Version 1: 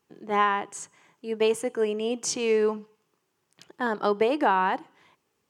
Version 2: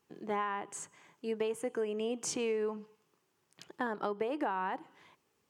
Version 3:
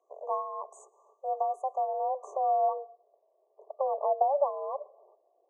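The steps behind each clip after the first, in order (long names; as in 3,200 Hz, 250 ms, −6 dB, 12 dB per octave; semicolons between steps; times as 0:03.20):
dynamic equaliser 5,000 Hz, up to −7 dB, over −46 dBFS, Q 1; downward compressor 5 to 1, threshold −30 dBFS, peak gain reduction 11.5 dB; level −1.5 dB
brick-wall band-stop 920–5,600 Hz; frequency shifter +270 Hz; low-pass filter sweep 3,100 Hz → 650 Hz, 0:01.72–0:03.03; level +3.5 dB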